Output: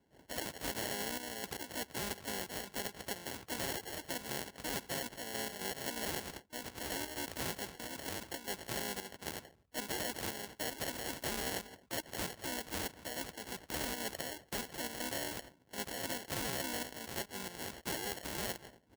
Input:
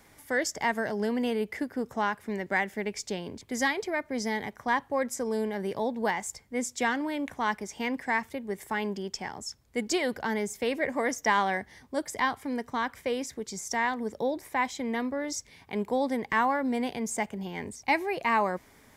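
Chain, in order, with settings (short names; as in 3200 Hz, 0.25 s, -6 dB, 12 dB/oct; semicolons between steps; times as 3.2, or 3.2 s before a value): step gate ".x.x.xxxx." 115 bpm -12 dB; outdoor echo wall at 42 m, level -30 dB; dynamic EQ 160 Hz, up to -6 dB, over -48 dBFS, Q 0.99; harmoniser -3 st -15 dB, +4 st -4 dB, +12 st -13 dB; high shelf 3400 Hz -10.5 dB; sample-and-hold 36×; gate -49 dBFS, range -14 dB; HPF 53 Hz; limiter -23 dBFS, peak gain reduction 10.5 dB; spectral compressor 2:1; gain +3 dB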